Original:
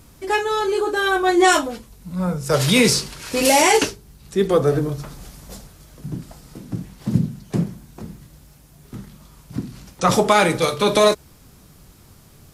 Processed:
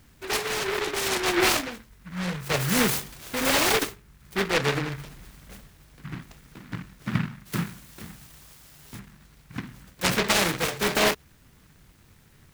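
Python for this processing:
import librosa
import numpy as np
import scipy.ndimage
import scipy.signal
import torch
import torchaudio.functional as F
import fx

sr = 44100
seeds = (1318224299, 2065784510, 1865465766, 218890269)

y = fx.high_shelf_res(x, sr, hz=2500.0, db=13.0, q=1.5, at=(7.45, 8.98), fade=0.02)
y = fx.noise_mod_delay(y, sr, seeds[0], noise_hz=1500.0, depth_ms=0.3)
y = y * 10.0 ** (-7.5 / 20.0)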